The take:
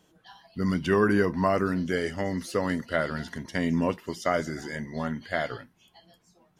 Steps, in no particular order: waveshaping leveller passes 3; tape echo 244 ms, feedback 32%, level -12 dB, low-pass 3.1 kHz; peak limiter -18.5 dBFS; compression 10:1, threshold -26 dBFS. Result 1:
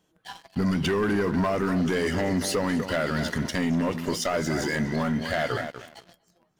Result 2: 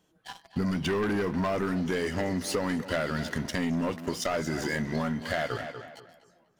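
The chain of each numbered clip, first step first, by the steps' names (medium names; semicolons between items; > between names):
compression > tape echo > waveshaping leveller > peak limiter; waveshaping leveller > tape echo > compression > peak limiter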